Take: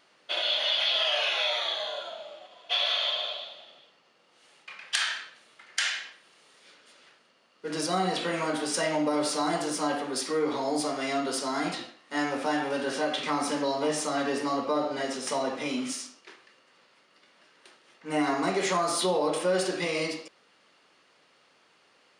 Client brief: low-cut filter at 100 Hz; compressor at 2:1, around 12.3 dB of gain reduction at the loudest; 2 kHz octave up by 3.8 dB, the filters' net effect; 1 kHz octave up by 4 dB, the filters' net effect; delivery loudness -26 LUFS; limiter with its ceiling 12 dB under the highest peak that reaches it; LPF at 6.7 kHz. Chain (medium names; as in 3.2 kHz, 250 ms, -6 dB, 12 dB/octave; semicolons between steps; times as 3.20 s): high-pass 100 Hz; low-pass 6.7 kHz; peaking EQ 1 kHz +4.5 dB; peaking EQ 2 kHz +3.5 dB; compression 2:1, threshold -43 dBFS; trim +14.5 dB; peak limiter -17 dBFS